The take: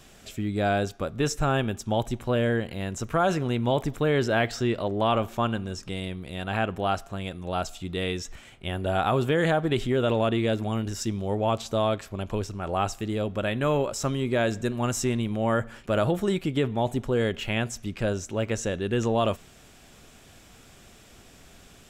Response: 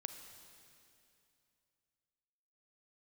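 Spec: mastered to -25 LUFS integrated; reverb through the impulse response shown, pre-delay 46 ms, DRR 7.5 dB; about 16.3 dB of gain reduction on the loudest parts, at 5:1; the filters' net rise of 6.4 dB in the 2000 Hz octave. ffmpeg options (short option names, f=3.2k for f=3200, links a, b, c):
-filter_complex "[0:a]equalizer=f=2k:t=o:g=8.5,acompressor=threshold=-37dB:ratio=5,asplit=2[a][b];[1:a]atrim=start_sample=2205,adelay=46[c];[b][c]afir=irnorm=-1:irlink=0,volume=-4.5dB[d];[a][d]amix=inputs=2:normalize=0,volume=14dB"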